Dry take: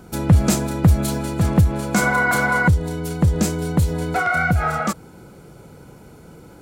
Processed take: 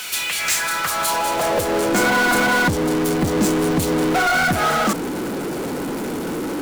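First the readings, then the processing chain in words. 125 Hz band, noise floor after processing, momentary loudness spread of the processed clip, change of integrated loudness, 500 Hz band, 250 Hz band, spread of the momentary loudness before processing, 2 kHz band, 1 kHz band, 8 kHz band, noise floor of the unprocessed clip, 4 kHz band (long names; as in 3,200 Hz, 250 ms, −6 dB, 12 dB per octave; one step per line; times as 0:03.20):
−10.0 dB, −26 dBFS, 10 LU, 0.0 dB, +5.5 dB, +1.0 dB, 6 LU, +2.0 dB, +3.5 dB, +5.5 dB, −45 dBFS, +9.5 dB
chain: high-pass filter sweep 2,700 Hz → 270 Hz, 0:00.28–0:02.12
power curve on the samples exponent 0.35
level −7.5 dB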